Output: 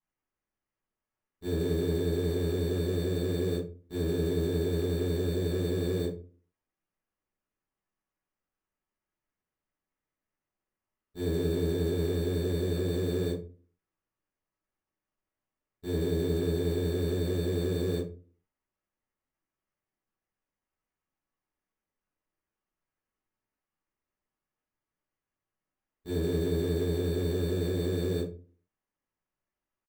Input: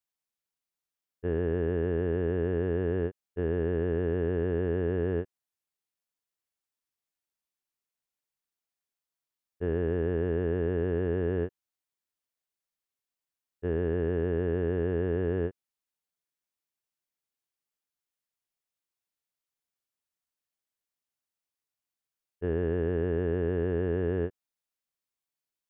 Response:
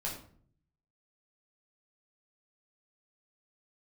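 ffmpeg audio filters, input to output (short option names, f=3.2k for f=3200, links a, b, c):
-filter_complex "[0:a]atempo=0.86,acrusher=samples=11:mix=1:aa=0.000001[a];[1:a]atrim=start_sample=2205,asetrate=83790,aresample=44100[b];[a][b]afir=irnorm=-1:irlink=0"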